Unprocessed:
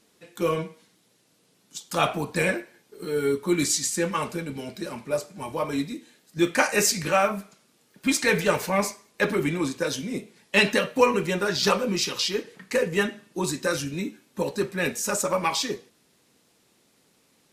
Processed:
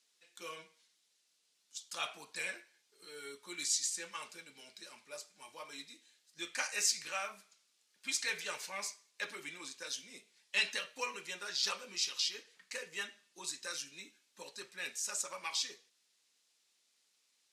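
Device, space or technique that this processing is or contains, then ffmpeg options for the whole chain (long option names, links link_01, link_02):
piezo pickup straight into a mixer: -af "lowpass=5700,aderivative,volume=-2dB"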